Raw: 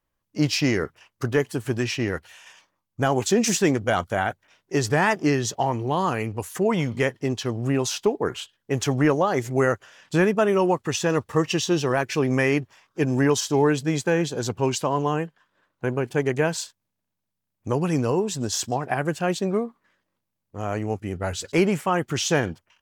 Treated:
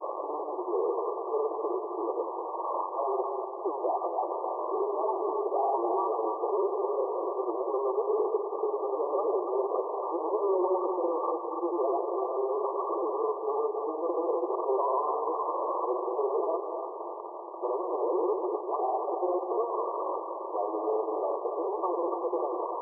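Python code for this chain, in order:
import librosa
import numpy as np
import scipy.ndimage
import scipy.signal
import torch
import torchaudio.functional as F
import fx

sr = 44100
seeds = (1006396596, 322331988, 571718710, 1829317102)

p1 = np.sign(x) * np.sqrt(np.mean(np.square(x)))
p2 = fx.granulator(p1, sr, seeds[0], grain_ms=100.0, per_s=20.0, spray_ms=100.0, spread_st=0)
p3 = fx.brickwall_bandpass(p2, sr, low_hz=330.0, high_hz=1200.0)
y = p3 + fx.echo_split(p3, sr, split_hz=590.0, low_ms=194, high_ms=281, feedback_pct=52, wet_db=-6, dry=0)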